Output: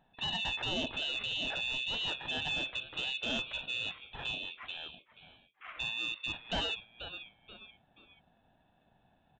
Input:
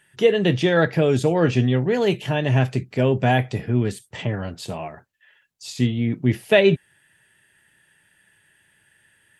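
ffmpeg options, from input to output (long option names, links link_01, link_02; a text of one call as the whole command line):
ffmpeg -i in.wav -filter_complex "[0:a]afftfilt=real='real(if(lt(b,272),68*(eq(floor(b/68),0)*1+eq(floor(b/68),1)*3+eq(floor(b/68),2)*0+eq(floor(b/68),3)*2)+mod(b,68),b),0)':imag='imag(if(lt(b,272),68*(eq(floor(b/68),0)*1+eq(floor(b/68),1)*3+eq(floor(b/68),2)*0+eq(floor(b/68),3)*2)+mod(b,68),b),0)':win_size=2048:overlap=0.75,equalizer=frequency=1500:width=1.2:gain=5,aeval=exprs='val(0)*sin(2*PI*450*n/s)':channel_layout=same,tiltshelf=frequency=970:gain=3,asplit=4[link_01][link_02][link_03][link_04];[link_02]adelay=482,afreqshift=-130,volume=-18dB[link_05];[link_03]adelay=964,afreqshift=-260,volume=-27.1dB[link_06];[link_04]adelay=1446,afreqshift=-390,volume=-36.2dB[link_07];[link_01][link_05][link_06][link_07]amix=inputs=4:normalize=0,aresample=8000,aresample=44100,deesser=0.7,aresample=16000,asoftclip=type=tanh:threshold=-19dB,aresample=44100,volume=-7dB" out.wav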